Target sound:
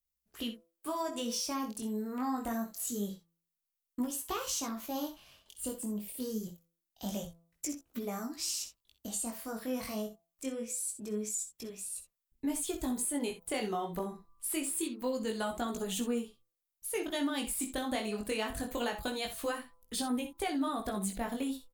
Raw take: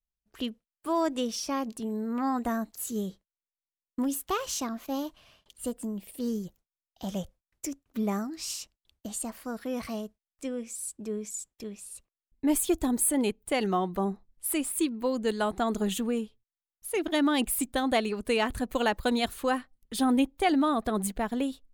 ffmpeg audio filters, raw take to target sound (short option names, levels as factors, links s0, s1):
-filter_complex "[0:a]aemphasis=mode=production:type=50fm,acrossover=split=8400[s0][s1];[s1]acompressor=threshold=0.02:ratio=4:attack=1:release=60[s2];[s0][s2]amix=inputs=2:normalize=0,highshelf=f=11000:g=-6,bandreject=f=167.3:t=h:w=4,bandreject=f=334.6:t=h:w=4,bandreject=f=501.9:t=h:w=4,bandreject=f=669.2:t=h:w=4,bandreject=f=836.5:t=h:w=4,bandreject=f=1003.8:t=h:w=4,bandreject=f=1171.1:t=h:w=4,bandreject=f=1338.4:t=h:w=4,acompressor=threshold=0.0398:ratio=6,flanger=delay=16.5:depth=7.2:speed=0.25,asplit=2[s3][s4];[s4]aecho=0:1:52|63:0.178|0.251[s5];[s3][s5]amix=inputs=2:normalize=0"